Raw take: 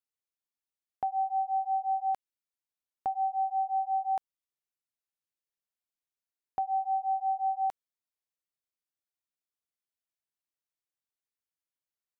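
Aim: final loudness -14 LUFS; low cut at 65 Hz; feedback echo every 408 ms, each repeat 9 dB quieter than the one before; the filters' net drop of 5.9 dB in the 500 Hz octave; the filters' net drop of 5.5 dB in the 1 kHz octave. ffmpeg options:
-af "highpass=65,equalizer=f=500:t=o:g=-7.5,equalizer=f=1000:t=o:g=-4,aecho=1:1:408|816|1224|1632:0.355|0.124|0.0435|0.0152,volume=13.3"

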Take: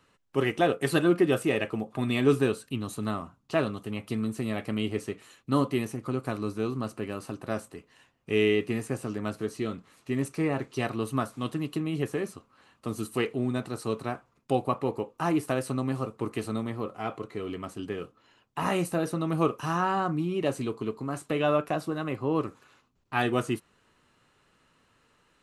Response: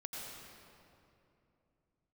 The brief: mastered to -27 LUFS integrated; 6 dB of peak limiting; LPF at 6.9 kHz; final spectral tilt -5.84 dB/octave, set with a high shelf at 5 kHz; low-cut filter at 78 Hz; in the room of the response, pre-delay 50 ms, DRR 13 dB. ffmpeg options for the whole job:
-filter_complex "[0:a]highpass=78,lowpass=6900,highshelf=f=5000:g=-4.5,alimiter=limit=0.158:level=0:latency=1,asplit=2[s0][s1];[1:a]atrim=start_sample=2205,adelay=50[s2];[s1][s2]afir=irnorm=-1:irlink=0,volume=0.237[s3];[s0][s3]amix=inputs=2:normalize=0,volume=1.58"

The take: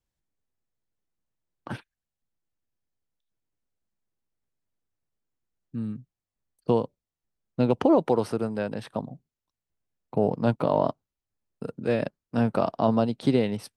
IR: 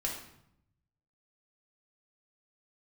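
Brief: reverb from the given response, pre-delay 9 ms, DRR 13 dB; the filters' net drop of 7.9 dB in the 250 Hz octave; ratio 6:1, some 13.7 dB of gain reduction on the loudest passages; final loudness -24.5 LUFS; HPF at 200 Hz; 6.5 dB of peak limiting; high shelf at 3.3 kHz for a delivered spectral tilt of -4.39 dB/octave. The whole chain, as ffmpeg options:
-filter_complex "[0:a]highpass=200,equalizer=f=250:t=o:g=-8,highshelf=f=3300:g=8.5,acompressor=threshold=0.02:ratio=6,alimiter=level_in=1.41:limit=0.0631:level=0:latency=1,volume=0.708,asplit=2[s0][s1];[1:a]atrim=start_sample=2205,adelay=9[s2];[s1][s2]afir=irnorm=-1:irlink=0,volume=0.158[s3];[s0][s3]amix=inputs=2:normalize=0,volume=7.5"

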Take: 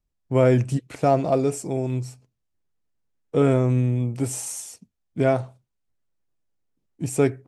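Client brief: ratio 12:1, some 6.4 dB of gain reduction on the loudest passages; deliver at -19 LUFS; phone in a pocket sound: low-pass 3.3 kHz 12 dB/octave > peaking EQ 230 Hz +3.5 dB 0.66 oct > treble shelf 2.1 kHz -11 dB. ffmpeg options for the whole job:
-af "acompressor=threshold=0.112:ratio=12,lowpass=3300,equalizer=f=230:t=o:w=0.66:g=3.5,highshelf=f=2100:g=-11,volume=2.37"

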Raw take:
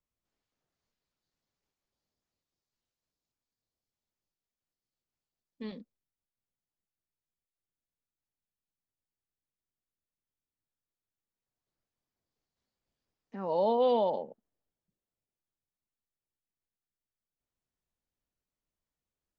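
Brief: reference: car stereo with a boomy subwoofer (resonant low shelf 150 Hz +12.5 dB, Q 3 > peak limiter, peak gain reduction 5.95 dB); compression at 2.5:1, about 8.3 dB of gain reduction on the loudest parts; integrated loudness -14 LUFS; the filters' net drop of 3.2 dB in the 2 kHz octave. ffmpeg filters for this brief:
-af "equalizer=f=2000:t=o:g=-4,acompressor=threshold=0.0158:ratio=2.5,lowshelf=f=150:t=q:w=3:g=12.5,volume=31.6,alimiter=limit=0.631:level=0:latency=1"

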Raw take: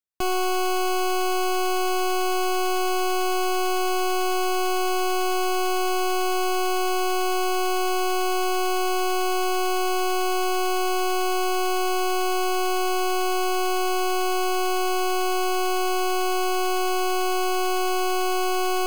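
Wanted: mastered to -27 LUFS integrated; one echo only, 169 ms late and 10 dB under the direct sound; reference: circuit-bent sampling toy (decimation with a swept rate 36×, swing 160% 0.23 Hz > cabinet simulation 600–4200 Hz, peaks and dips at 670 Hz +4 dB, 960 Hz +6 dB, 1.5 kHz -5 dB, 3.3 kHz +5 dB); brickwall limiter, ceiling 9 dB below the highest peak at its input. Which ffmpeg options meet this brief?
-af "alimiter=level_in=2.37:limit=0.0631:level=0:latency=1,volume=0.422,aecho=1:1:169:0.316,acrusher=samples=36:mix=1:aa=0.000001:lfo=1:lforange=57.6:lforate=0.23,highpass=600,equalizer=f=670:t=q:w=4:g=4,equalizer=f=960:t=q:w=4:g=6,equalizer=f=1500:t=q:w=4:g=-5,equalizer=f=3300:t=q:w=4:g=5,lowpass=f=4200:w=0.5412,lowpass=f=4200:w=1.3066,volume=2.82"

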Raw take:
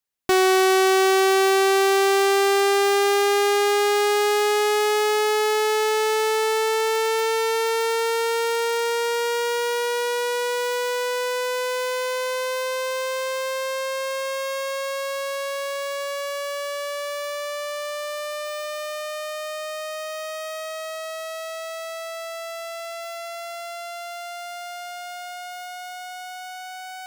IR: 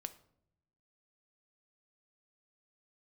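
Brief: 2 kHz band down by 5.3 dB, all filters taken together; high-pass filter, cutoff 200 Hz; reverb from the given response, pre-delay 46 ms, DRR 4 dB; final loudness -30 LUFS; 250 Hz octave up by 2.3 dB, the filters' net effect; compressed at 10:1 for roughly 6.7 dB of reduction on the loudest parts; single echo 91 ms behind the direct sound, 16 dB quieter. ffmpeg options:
-filter_complex "[0:a]highpass=200,equalizer=f=250:t=o:g=7,equalizer=f=2000:t=o:g=-7,acompressor=threshold=0.0891:ratio=10,aecho=1:1:91:0.158,asplit=2[s0][s1];[1:a]atrim=start_sample=2205,adelay=46[s2];[s1][s2]afir=irnorm=-1:irlink=0,volume=0.944[s3];[s0][s3]amix=inputs=2:normalize=0,volume=0.562"

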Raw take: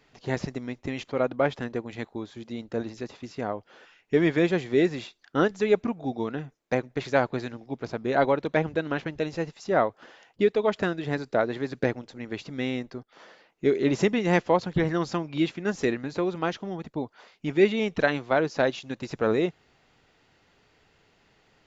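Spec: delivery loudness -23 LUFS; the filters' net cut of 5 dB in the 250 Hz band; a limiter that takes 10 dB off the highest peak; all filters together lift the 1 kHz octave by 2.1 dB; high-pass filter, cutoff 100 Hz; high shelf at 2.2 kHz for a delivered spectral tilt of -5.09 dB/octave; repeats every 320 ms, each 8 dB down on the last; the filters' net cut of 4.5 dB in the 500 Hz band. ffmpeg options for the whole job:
-af "highpass=100,equalizer=f=250:t=o:g=-5,equalizer=f=500:t=o:g=-5.5,equalizer=f=1000:t=o:g=7,highshelf=f=2200:g=-7.5,alimiter=limit=0.133:level=0:latency=1,aecho=1:1:320|640|960|1280|1600:0.398|0.159|0.0637|0.0255|0.0102,volume=3.16"

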